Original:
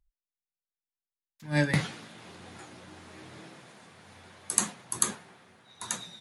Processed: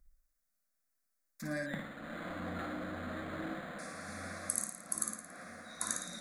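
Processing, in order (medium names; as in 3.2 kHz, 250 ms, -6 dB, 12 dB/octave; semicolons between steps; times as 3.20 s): compression 20:1, threshold -42 dBFS, peak gain reduction 25 dB; static phaser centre 600 Hz, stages 8; flutter echo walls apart 9.6 m, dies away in 0.65 s; 1.66–3.79 s: decimation joined by straight lines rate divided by 8×; trim +10.5 dB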